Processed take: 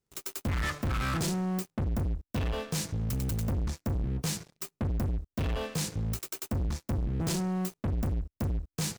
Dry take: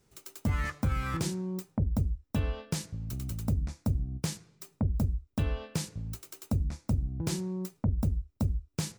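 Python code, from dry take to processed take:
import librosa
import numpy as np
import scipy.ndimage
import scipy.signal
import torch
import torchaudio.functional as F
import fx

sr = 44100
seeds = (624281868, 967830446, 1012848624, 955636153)

y = fx.leveller(x, sr, passes=5)
y = F.gain(torch.from_numpy(y), -7.5).numpy()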